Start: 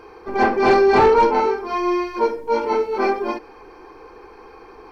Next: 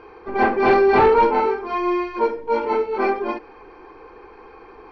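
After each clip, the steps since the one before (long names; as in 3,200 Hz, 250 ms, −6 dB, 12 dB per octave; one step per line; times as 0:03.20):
Chebyshev low-pass filter 3,000 Hz, order 2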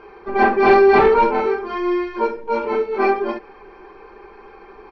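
comb filter 5.1 ms, depth 55%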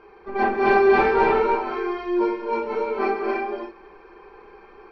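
reverb whose tail is shaped and stops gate 350 ms rising, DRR 0 dB
level −7 dB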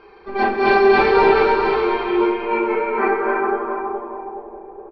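repeating echo 420 ms, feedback 40%, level −5 dB
low-pass filter sweep 4,400 Hz → 710 Hz, 0:01.71–0:04.63
level +2.5 dB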